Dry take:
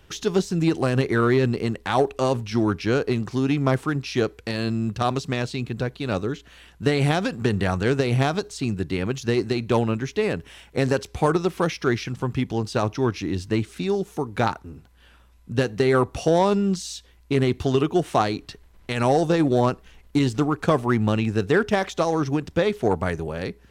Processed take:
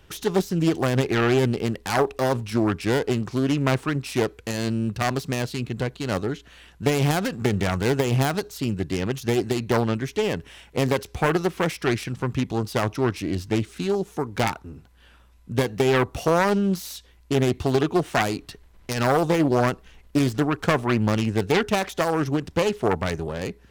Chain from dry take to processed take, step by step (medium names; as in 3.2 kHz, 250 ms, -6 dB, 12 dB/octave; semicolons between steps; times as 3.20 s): self-modulated delay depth 0.4 ms